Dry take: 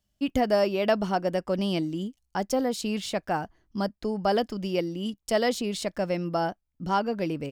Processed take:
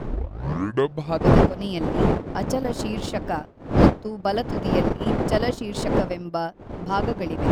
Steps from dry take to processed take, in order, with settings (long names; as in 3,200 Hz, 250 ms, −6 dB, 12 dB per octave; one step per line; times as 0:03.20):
turntable start at the beginning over 1.31 s
wind on the microphone 430 Hz −24 dBFS
transient designer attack +2 dB, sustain −10 dB